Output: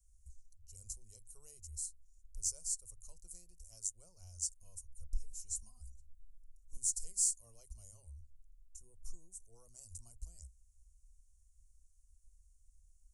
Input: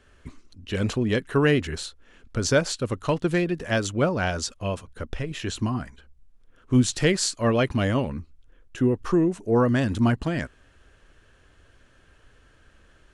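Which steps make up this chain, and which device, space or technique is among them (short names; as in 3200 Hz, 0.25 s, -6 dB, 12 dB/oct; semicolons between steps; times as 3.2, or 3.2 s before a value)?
inverse Chebyshev band-stop 120–3700 Hz, stop band 40 dB; notches 50/100/150/200 Hz; exciter from parts (in parallel at -6.5 dB: HPF 2300 Hz 24 dB/oct + soft clip -27 dBFS, distortion -14 dB); on the sum: dynamic EQ 9200 Hz, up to +4 dB, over -51 dBFS, Q 2.4; 4.63–6.77 comb 4 ms, depth 84%; gain -4.5 dB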